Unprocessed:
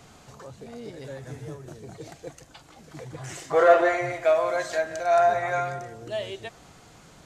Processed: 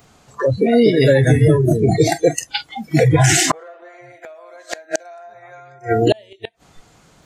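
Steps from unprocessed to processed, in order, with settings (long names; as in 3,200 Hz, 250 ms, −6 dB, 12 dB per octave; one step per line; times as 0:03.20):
noise reduction from a noise print of the clip's start 28 dB
downward compressor 10 to 1, threshold −26 dBFS, peak gain reduction 15.5 dB
gate with flip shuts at −26 dBFS, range −38 dB
boost into a limiter +30.5 dB
level −2.5 dB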